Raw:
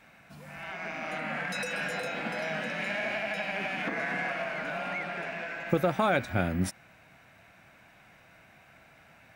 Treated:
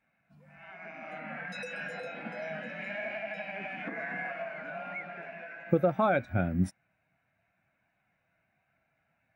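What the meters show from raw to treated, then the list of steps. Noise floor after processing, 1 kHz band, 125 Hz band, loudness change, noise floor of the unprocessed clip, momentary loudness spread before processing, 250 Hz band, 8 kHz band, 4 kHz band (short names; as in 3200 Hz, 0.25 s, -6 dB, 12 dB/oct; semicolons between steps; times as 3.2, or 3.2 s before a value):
-77 dBFS, -3.0 dB, 0.0 dB, -2.5 dB, -58 dBFS, 9 LU, -0.5 dB, under -10 dB, -11.0 dB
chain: spectral expander 1.5:1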